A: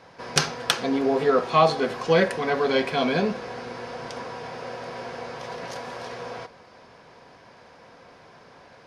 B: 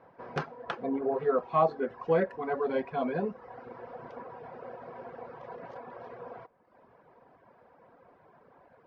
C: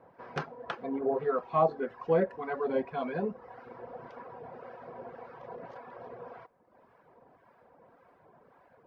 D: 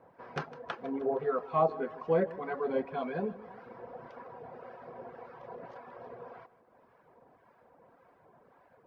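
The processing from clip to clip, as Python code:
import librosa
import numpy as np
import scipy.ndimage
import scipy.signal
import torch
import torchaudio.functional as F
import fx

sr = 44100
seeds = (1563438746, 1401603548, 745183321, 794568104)

y1 = fx.dereverb_blind(x, sr, rt60_s=0.98)
y1 = scipy.signal.sosfilt(scipy.signal.butter(2, 1200.0, 'lowpass', fs=sr, output='sos'), y1)
y1 = fx.low_shelf(y1, sr, hz=180.0, db=-5.5)
y1 = y1 * librosa.db_to_amplitude(-4.5)
y2 = fx.harmonic_tremolo(y1, sr, hz=1.8, depth_pct=50, crossover_hz=950.0)
y2 = y2 * librosa.db_to_amplitude(1.0)
y3 = fx.echo_feedback(y2, sr, ms=156, feedback_pct=55, wet_db=-17.5)
y3 = y3 * librosa.db_to_amplitude(-1.5)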